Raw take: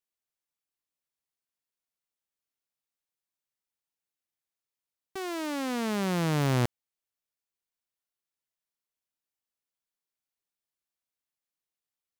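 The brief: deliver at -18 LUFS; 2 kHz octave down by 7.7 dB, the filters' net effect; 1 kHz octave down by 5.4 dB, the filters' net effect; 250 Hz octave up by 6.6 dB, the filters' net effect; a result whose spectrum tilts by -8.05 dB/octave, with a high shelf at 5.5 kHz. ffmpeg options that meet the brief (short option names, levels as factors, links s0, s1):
-af "equalizer=f=250:t=o:g=9,equalizer=f=1000:t=o:g=-6,equalizer=f=2000:t=o:g=-7.5,highshelf=f=5500:g=-4.5,volume=2.51"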